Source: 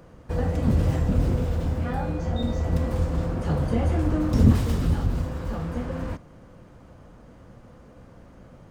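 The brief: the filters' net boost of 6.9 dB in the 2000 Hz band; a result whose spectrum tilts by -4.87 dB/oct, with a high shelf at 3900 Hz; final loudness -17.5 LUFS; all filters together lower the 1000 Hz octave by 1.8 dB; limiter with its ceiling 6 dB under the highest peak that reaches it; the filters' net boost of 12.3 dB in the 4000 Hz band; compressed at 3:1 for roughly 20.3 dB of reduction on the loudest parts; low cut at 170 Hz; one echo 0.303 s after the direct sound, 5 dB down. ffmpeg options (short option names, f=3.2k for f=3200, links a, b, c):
-af "highpass=170,equalizer=f=1k:t=o:g=-5,equalizer=f=2k:t=o:g=6.5,highshelf=f=3.9k:g=7.5,equalizer=f=4k:t=o:g=9,acompressor=threshold=-45dB:ratio=3,alimiter=level_in=11dB:limit=-24dB:level=0:latency=1,volume=-11dB,aecho=1:1:303:0.562,volume=27dB"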